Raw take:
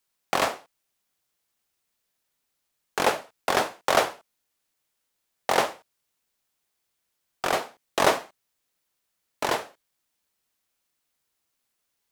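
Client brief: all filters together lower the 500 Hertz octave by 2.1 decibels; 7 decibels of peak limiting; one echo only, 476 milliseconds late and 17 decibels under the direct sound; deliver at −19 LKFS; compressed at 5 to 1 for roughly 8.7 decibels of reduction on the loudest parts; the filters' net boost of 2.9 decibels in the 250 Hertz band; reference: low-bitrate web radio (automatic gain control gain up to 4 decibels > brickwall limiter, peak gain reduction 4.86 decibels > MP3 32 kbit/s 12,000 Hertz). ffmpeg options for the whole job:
ffmpeg -i in.wav -af "equalizer=frequency=250:width_type=o:gain=5.5,equalizer=frequency=500:width_type=o:gain=-4,acompressor=threshold=-26dB:ratio=5,alimiter=limit=-16.5dB:level=0:latency=1,aecho=1:1:476:0.141,dynaudnorm=maxgain=4dB,alimiter=limit=-21.5dB:level=0:latency=1,volume=21dB" -ar 12000 -c:a libmp3lame -b:a 32k out.mp3

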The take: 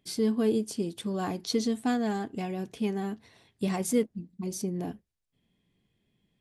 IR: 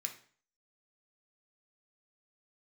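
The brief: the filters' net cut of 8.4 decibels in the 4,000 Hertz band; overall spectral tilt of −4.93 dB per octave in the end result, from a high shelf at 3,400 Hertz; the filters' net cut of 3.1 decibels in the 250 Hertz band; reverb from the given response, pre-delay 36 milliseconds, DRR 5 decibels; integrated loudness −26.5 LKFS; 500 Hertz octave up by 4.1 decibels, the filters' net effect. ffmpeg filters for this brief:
-filter_complex "[0:a]equalizer=frequency=250:width_type=o:gain=-5,equalizer=frequency=500:width_type=o:gain=6.5,highshelf=frequency=3400:gain=-4.5,equalizer=frequency=4000:width_type=o:gain=-7,asplit=2[link_01][link_02];[1:a]atrim=start_sample=2205,adelay=36[link_03];[link_02][link_03]afir=irnorm=-1:irlink=0,volume=-4dB[link_04];[link_01][link_04]amix=inputs=2:normalize=0,volume=3.5dB"

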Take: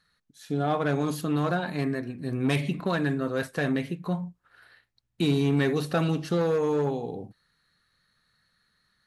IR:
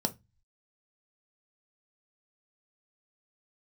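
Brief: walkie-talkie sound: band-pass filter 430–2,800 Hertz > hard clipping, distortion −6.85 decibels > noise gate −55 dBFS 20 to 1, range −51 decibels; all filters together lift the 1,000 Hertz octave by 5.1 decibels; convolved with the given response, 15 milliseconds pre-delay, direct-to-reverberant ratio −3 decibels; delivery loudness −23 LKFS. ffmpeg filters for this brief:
-filter_complex "[0:a]equalizer=frequency=1000:width_type=o:gain=7.5,asplit=2[link_01][link_02];[1:a]atrim=start_sample=2205,adelay=15[link_03];[link_02][link_03]afir=irnorm=-1:irlink=0,volume=-2dB[link_04];[link_01][link_04]amix=inputs=2:normalize=0,highpass=430,lowpass=2800,asoftclip=type=hard:threshold=-23dB,agate=range=-51dB:threshold=-55dB:ratio=20,volume=4dB"

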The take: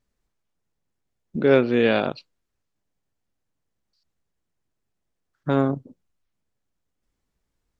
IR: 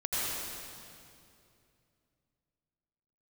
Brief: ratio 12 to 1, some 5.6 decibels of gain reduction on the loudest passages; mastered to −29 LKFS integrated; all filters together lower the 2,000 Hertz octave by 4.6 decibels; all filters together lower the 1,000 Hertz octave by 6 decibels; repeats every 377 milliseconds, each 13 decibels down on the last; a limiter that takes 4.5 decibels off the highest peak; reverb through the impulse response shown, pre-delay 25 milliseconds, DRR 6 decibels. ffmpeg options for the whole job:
-filter_complex "[0:a]equalizer=frequency=1000:width_type=o:gain=-8.5,equalizer=frequency=2000:width_type=o:gain=-3,acompressor=threshold=-18dB:ratio=12,alimiter=limit=-15.5dB:level=0:latency=1,aecho=1:1:377|754|1131:0.224|0.0493|0.0108,asplit=2[link_01][link_02];[1:a]atrim=start_sample=2205,adelay=25[link_03];[link_02][link_03]afir=irnorm=-1:irlink=0,volume=-14.5dB[link_04];[link_01][link_04]amix=inputs=2:normalize=0"

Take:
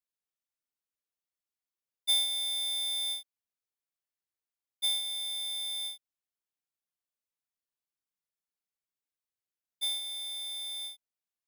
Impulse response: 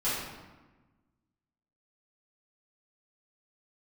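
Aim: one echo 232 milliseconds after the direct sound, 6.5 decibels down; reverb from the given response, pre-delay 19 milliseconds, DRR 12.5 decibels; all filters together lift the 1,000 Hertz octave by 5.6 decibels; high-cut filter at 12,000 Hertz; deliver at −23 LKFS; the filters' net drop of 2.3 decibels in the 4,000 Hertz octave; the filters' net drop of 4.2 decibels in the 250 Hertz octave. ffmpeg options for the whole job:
-filter_complex "[0:a]lowpass=12000,equalizer=frequency=250:width_type=o:gain=-9,equalizer=frequency=1000:width_type=o:gain=8.5,equalizer=frequency=4000:width_type=o:gain=-3,aecho=1:1:232:0.473,asplit=2[link_01][link_02];[1:a]atrim=start_sample=2205,adelay=19[link_03];[link_02][link_03]afir=irnorm=-1:irlink=0,volume=-21.5dB[link_04];[link_01][link_04]amix=inputs=2:normalize=0,volume=8dB"

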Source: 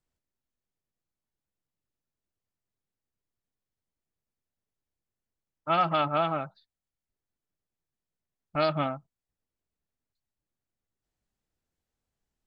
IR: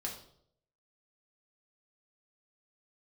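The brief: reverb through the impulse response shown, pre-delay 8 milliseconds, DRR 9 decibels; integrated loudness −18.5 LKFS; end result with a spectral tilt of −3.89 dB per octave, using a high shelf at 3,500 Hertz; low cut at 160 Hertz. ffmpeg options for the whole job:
-filter_complex "[0:a]highpass=160,highshelf=frequency=3500:gain=-5,asplit=2[link_01][link_02];[1:a]atrim=start_sample=2205,adelay=8[link_03];[link_02][link_03]afir=irnorm=-1:irlink=0,volume=-9.5dB[link_04];[link_01][link_04]amix=inputs=2:normalize=0,volume=9dB"

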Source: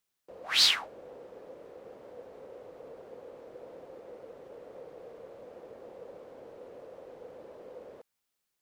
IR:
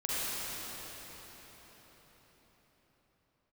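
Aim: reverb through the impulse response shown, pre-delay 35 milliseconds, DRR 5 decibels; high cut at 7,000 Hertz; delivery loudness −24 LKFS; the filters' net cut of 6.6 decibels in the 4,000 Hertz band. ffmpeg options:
-filter_complex "[0:a]lowpass=7000,equalizer=frequency=4000:width_type=o:gain=-7.5,asplit=2[link_01][link_02];[1:a]atrim=start_sample=2205,adelay=35[link_03];[link_02][link_03]afir=irnorm=-1:irlink=0,volume=-13.5dB[link_04];[link_01][link_04]amix=inputs=2:normalize=0,volume=15.5dB"

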